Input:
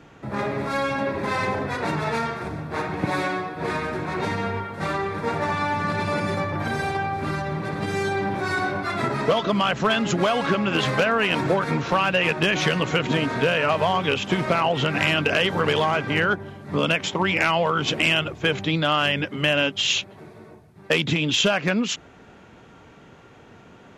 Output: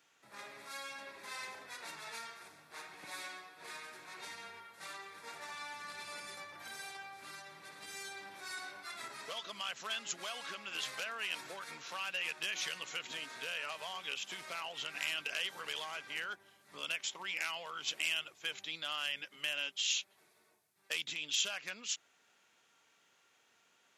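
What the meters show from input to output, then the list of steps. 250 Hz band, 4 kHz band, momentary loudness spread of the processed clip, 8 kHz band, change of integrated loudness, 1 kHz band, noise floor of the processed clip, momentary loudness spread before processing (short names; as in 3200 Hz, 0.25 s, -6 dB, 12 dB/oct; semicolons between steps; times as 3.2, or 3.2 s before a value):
-34.5 dB, -12.5 dB, 13 LU, -6.5 dB, -17.0 dB, -22.0 dB, -71 dBFS, 7 LU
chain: differentiator; gain -5.5 dB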